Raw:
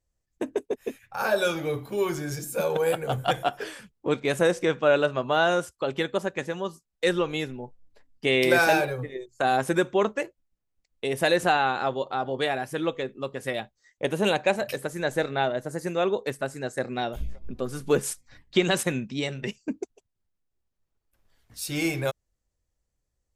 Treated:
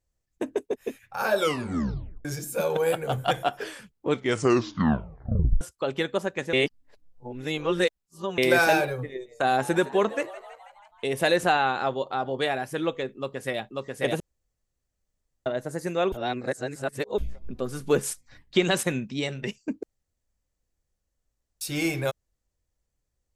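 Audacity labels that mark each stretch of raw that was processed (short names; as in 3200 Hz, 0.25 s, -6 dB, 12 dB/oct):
1.380000	1.380000	tape stop 0.87 s
4.110000	4.110000	tape stop 1.50 s
6.530000	8.380000	reverse
9.080000	11.310000	frequency-shifting echo 0.162 s, feedback 62%, per repeat +84 Hz, level -17 dB
13.160000	13.610000	echo throw 0.54 s, feedback 25%, level -1 dB
14.200000	15.460000	room tone
16.120000	17.180000	reverse
19.830000	21.610000	room tone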